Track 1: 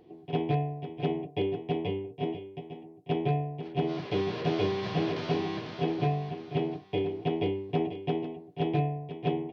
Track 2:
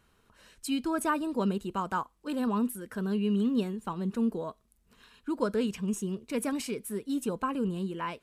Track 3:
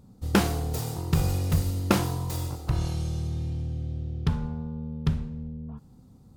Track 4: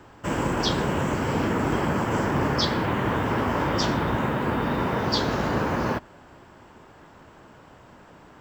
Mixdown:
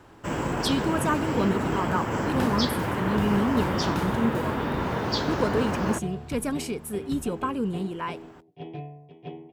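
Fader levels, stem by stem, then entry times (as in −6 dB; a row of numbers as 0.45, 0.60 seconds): −10.0, +2.5, −11.5, −3.0 decibels; 0.00, 0.00, 2.05, 0.00 seconds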